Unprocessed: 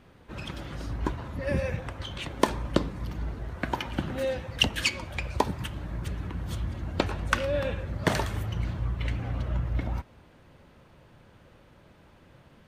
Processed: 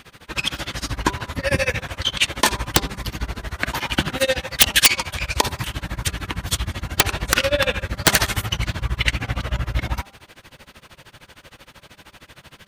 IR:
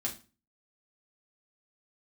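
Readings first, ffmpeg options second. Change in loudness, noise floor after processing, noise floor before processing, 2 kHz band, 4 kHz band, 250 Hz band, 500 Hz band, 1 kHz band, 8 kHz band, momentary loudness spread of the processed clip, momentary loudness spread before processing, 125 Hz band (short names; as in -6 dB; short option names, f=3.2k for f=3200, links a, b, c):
+9.5 dB, -55 dBFS, -56 dBFS, +12.0 dB, +13.0 dB, +3.5 dB, +5.5 dB, +7.5 dB, +19.5 dB, 12 LU, 9 LU, +4.5 dB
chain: -af "tiltshelf=f=1.3k:g=-8.5,tremolo=f=13:d=0.97,aeval=exprs='(mod(5.62*val(0)+1,2)-1)/5.62':c=same,bandreject=f=198.1:t=h:w=4,bandreject=f=396.2:t=h:w=4,bandreject=f=594.3:t=h:w=4,bandreject=f=792.4:t=h:w=4,bandreject=f=990.5:t=h:w=4,bandreject=f=1.1886k:t=h:w=4,bandreject=f=1.3867k:t=h:w=4,alimiter=level_in=18dB:limit=-1dB:release=50:level=0:latency=1,volume=-1dB"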